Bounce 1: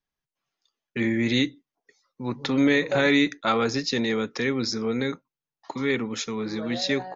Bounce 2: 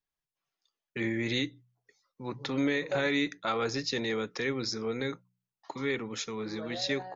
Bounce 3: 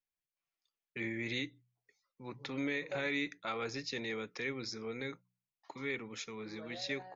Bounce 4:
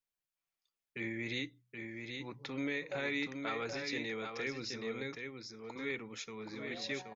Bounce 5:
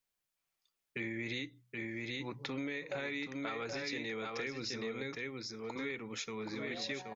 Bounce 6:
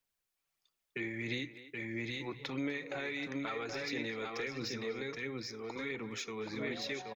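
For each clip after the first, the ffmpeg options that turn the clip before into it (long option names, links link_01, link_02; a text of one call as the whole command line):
ffmpeg -i in.wav -af "equalizer=frequency=240:width=5.1:gain=-7,bandreject=frequency=61.23:width_type=h:width=4,bandreject=frequency=122.46:width_type=h:width=4,bandreject=frequency=183.69:width_type=h:width=4,alimiter=limit=-14dB:level=0:latency=1:release=188,volume=-5dB" out.wav
ffmpeg -i in.wav -af "equalizer=frequency=2300:width=3:gain=6.5,volume=-8.5dB" out.wav
ffmpeg -i in.wav -af "aecho=1:1:775:0.531,volume=-1dB" out.wav
ffmpeg -i in.wav -af "acompressor=threshold=-41dB:ratio=6,volume=5dB" out.wav
ffmpeg -i in.wav -filter_complex "[0:a]aphaser=in_gain=1:out_gain=1:delay=2.8:decay=0.34:speed=1.5:type=sinusoidal,acrossover=split=100|3700[link_01][link_02][link_03];[link_03]asoftclip=type=tanh:threshold=-36.5dB[link_04];[link_01][link_02][link_04]amix=inputs=3:normalize=0,asplit=2[link_05][link_06];[link_06]adelay=250,highpass=300,lowpass=3400,asoftclip=type=hard:threshold=-31dB,volume=-13dB[link_07];[link_05][link_07]amix=inputs=2:normalize=0" out.wav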